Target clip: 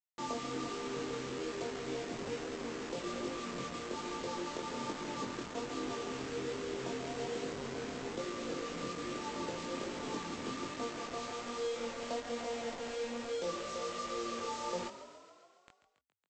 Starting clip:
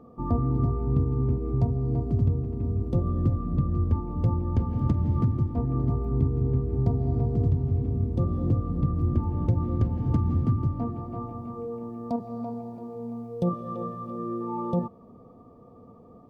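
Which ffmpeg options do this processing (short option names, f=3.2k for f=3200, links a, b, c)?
-filter_complex "[0:a]highpass=f=270:w=0.5412,highpass=f=270:w=1.3066,aemphasis=mode=production:type=50fm,bandreject=f=50:t=h:w=6,bandreject=f=100:t=h:w=6,bandreject=f=150:t=h:w=6,bandreject=f=200:t=h:w=6,bandreject=f=250:t=h:w=6,bandreject=f=300:t=h:w=6,bandreject=f=350:t=h:w=6,bandreject=f=400:t=h:w=6,aecho=1:1:2:0.35,acompressor=threshold=-36dB:ratio=3,aresample=16000,acrusher=bits=6:mix=0:aa=0.000001,aresample=44100,flanger=delay=19.5:depth=4.8:speed=1.2,asplit=9[a][b][c][d][e][f][g][h][i];[b]adelay=139,afreqshift=31,volume=-13dB[j];[c]adelay=278,afreqshift=62,volume=-16.7dB[k];[d]adelay=417,afreqshift=93,volume=-20.5dB[l];[e]adelay=556,afreqshift=124,volume=-24.2dB[m];[f]adelay=695,afreqshift=155,volume=-28dB[n];[g]adelay=834,afreqshift=186,volume=-31.7dB[o];[h]adelay=973,afreqshift=217,volume=-35.5dB[p];[i]adelay=1112,afreqshift=248,volume=-39.2dB[q];[a][j][k][l][m][n][o][p][q]amix=inputs=9:normalize=0,volume=2.5dB"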